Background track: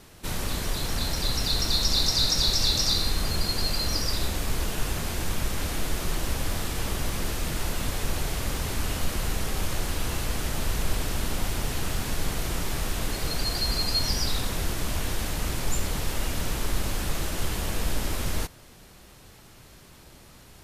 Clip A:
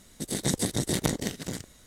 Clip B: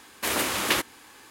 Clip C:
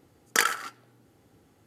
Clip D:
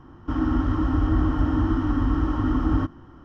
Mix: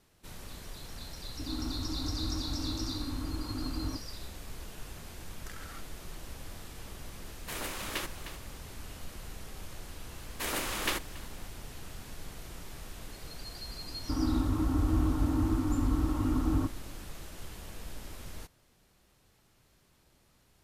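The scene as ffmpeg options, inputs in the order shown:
-filter_complex "[4:a]asplit=2[a][b];[2:a]asplit=2[c][d];[0:a]volume=-16dB[e];[a]afwtdn=0.0316[f];[3:a]acompressor=threshold=-34dB:ratio=5:attack=0.65:release=148:knee=1:detection=peak[g];[c]aecho=1:1:308:0.282[h];[d]aecho=1:1:281:0.0891[i];[b]lowpass=1.2k[j];[f]atrim=end=3.24,asetpts=PTS-STARTPTS,volume=-14.5dB,afade=t=in:d=0.004:c=hsin,afade=t=out:st=3.236:d=0.004:c=hsin,adelay=1110[k];[g]atrim=end=1.66,asetpts=PTS-STARTPTS,volume=-9dB,afade=t=in:d=0.004:c=hsin,afade=t=out:st=1.656:d=0.004:c=hsin,adelay=5110[l];[h]atrim=end=1.3,asetpts=PTS-STARTPTS,volume=-12.5dB,afade=t=in:d=0.004:c=hsin,afade=t=out:st=1.296:d=0.004:c=hsin,adelay=7250[m];[i]atrim=end=1.3,asetpts=PTS-STARTPTS,volume=-8dB,afade=t=in:d=0.004:c=hsin,afade=t=out:st=1.296:d=0.004:c=hsin,adelay=10170[n];[j]atrim=end=3.24,asetpts=PTS-STARTPTS,volume=-6.5dB,afade=t=in:d=0.004:c=hsin,afade=t=out:st=3.236:d=0.004:c=hsin,adelay=13810[o];[e][k][l][m][n][o]amix=inputs=6:normalize=0"

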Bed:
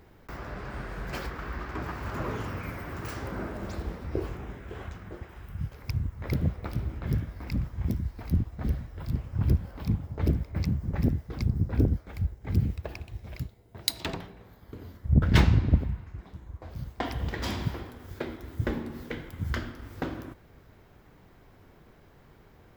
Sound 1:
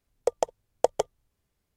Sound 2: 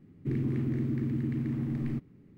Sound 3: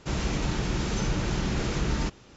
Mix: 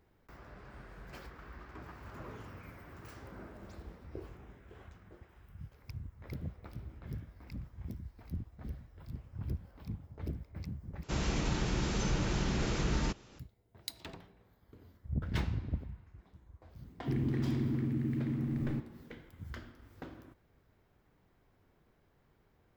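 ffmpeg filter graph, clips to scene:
-filter_complex "[0:a]volume=-14dB,asplit=2[a][b];[a]atrim=end=11.034[c];[3:a]atrim=end=2.36,asetpts=PTS-STARTPTS,volume=-4.5dB[d];[b]atrim=start=13.386[e];[2:a]atrim=end=2.37,asetpts=PTS-STARTPTS,volume=-2.5dB,afade=t=in:d=0.004:c=hsin,afade=t=out:st=2.366:d=0.004:c=hsin,adelay=16810[f];[c][d]acrossfade=d=0.004:c1=hsin:c2=hsin[g];[g][e]acrossfade=d=0.004:c1=hsin:c2=hsin[h];[h][f]amix=inputs=2:normalize=0"

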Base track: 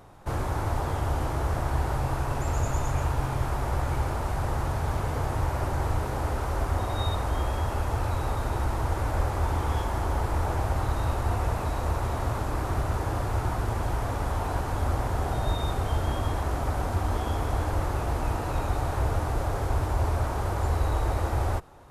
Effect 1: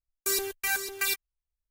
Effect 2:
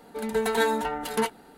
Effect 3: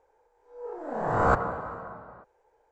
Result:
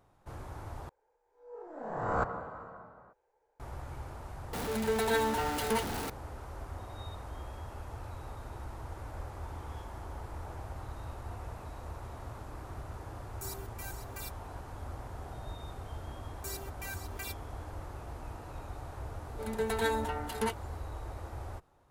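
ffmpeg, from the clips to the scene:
-filter_complex "[2:a]asplit=2[a][b];[1:a]asplit=2[c][d];[0:a]volume=-15.5dB[e];[a]aeval=exprs='val(0)+0.5*0.0631*sgn(val(0))':c=same[f];[c]equalizer=f=2.2k:w=0.67:g=-6.5[g];[e]asplit=2[h][i];[h]atrim=end=0.894[j];[3:a]atrim=end=2.71,asetpts=PTS-STARTPTS,volume=-8.5dB[k];[i]atrim=start=3.596[l];[f]atrim=end=1.57,asetpts=PTS-STARTPTS,volume=-8dB,afade=t=in:d=0.004:c=hsin,afade=t=out:st=1.566:d=0.004:c=hsin,adelay=199773S[m];[g]atrim=end=1.7,asetpts=PTS-STARTPTS,volume=-14.5dB,afade=t=in:d=0.004:c=hsin,afade=t=out:st=1.696:d=0.004:c=hsin,adelay=13150[n];[d]atrim=end=1.7,asetpts=PTS-STARTPTS,volume=-14.5dB,afade=t=in:d=0.004:c=hsin,afade=t=out:st=1.696:d=0.004:c=hsin,adelay=16180[o];[b]atrim=end=1.57,asetpts=PTS-STARTPTS,volume=-7dB,afade=t=in:d=0.004:c=hsin,afade=t=out:st=1.566:d=0.004:c=hsin,adelay=848484S[p];[j][k]acrossfade=d=0.004:c1=hsin:c2=hsin[q];[q][l]acrossfade=d=0.004:c1=hsin:c2=hsin[r];[r][m][n][o][p]amix=inputs=5:normalize=0"

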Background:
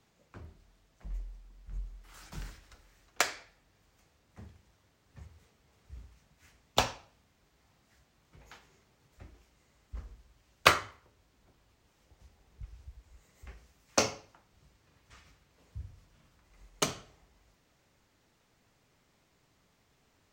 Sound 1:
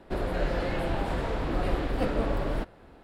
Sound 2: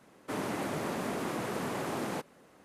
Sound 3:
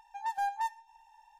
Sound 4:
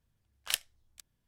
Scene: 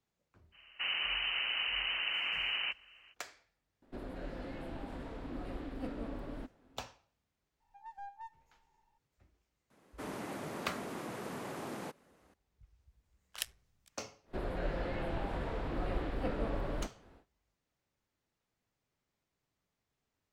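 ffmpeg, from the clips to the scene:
-filter_complex "[2:a]asplit=2[a][b];[1:a]asplit=2[c][d];[0:a]volume=-16.5dB[e];[a]lowpass=f=2.7k:t=q:w=0.5098,lowpass=f=2.7k:t=q:w=0.6013,lowpass=f=2.7k:t=q:w=0.9,lowpass=f=2.7k:t=q:w=2.563,afreqshift=-3200[f];[c]equalizer=f=260:w=3.7:g=11[g];[3:a]aemphasis=mode=reproduction:type=riaa[h];[4:a]tremolo=f=120:d=0.75[i];[d]acrossover=split=3900[j][k];[k]acompressor=threshold=-57dB:ratio=4:attack=1:release=60[l];[j][l]amix=inputs=2:normalize=0[m];[f]atrim=end=2.64,asetpts=PTS-STARTPTS,volume=-0.5dB,afade=t=in:d=0.05,afade=t=out:st=2.59:d=0.05,adelay=510[n];[g]atrim=end=3.03,asetpts=PTS-STARTPTS,volume=-16dB,afade=t=in:d=0.004:c=hsin,afade=t=out:st=3.026:d=0.004:c=hsin,adelay=3820[o];[h]atrim=end=1.39,asetpts=PTS-STARTPTS,volume=-16dB,afade=t=in:d=0.02,afade=t=out:st=1.37:d=0.02,adelay=7600[p];[b]atrim=end=2.64,asetpts=PTS-STARTPTS,volume=-7.5dB,afade=t=in:d=0.004:c=hsin,afade=t=out:st=2.636:d=0.004:c=hsin,adelay=427770S[q];[i]atrim=end=1.27,asetpts=PTS-STARTPTS,volume=-4dB,afade=t=in:d=0.004:c=hsin,afade=t=out:st=1.266:d=0.004:c=hsin,adelay=12880[r];[m]atrim=end=3.03,asetpts=PTS-STARTPTS,volume=-8dB,afade=t=in:d=0.1,afade=t=out:st=2.93:d=0.1,adelay=14230[s];[e][n][o][p][q][r][s]amix=inputs=7:normalize=0"

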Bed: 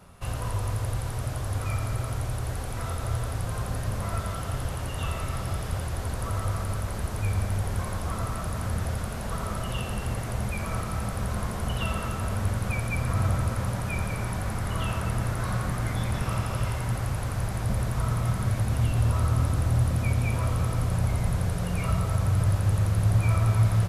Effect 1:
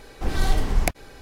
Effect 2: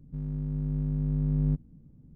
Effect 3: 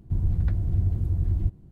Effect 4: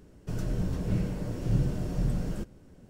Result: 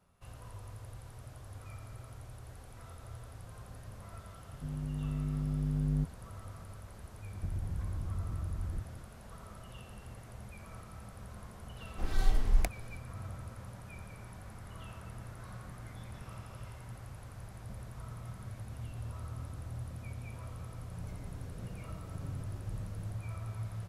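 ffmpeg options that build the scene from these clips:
-filter_complex "[0:a]volume=-18.5dB[a];[3:a]acompressor=threshold=-32dB:ratio=6:attack=3.2:release=140:knee=1:detection=peak[b];[1:a]asubboost=boost=9:cutoff=69[c];[4:a]asplit=2[d][e];[e]adelay=5.9,afreqshift=-0.99[f];[d][f]amix=inputs=2:normalize=1[g];[2:a]atrim=end=2.15,asetpts=PTS-STARTPTS,volume=-5dB,afade=t=in:d=0.004:c=hsin,afade=t=out:st=2.146:d=0.004:c=hsin,adelay=198009S[h];[b]atrim=end=1.71,asetpts=PTS-STARTPTS,volume=-2dB,afade=t=in:d=0.004:c=hsin,afade=t=out:st=1.706:d=0.004:c=hsin,adelay=7330[i];[c]atrim=end=1.21,asetpts=PTS-STARTPTS,volume=-12.5dB,afade=t=in:d=0.004:c=hsin,afade=t=out:st=1.206:d=0.004:c=hsin,adelay=11770[j];[g]atrim=end=2.89,asetpts=PTS-STARTPTS,volume=-14.5dB,afade=t=in:d=0.004:c=hsin,afade=t=out:st=2.886:d=0.004:c=hsin,adelay=20690[k];[a][h][i][j][k]amix=inputs=5:normalize=0"

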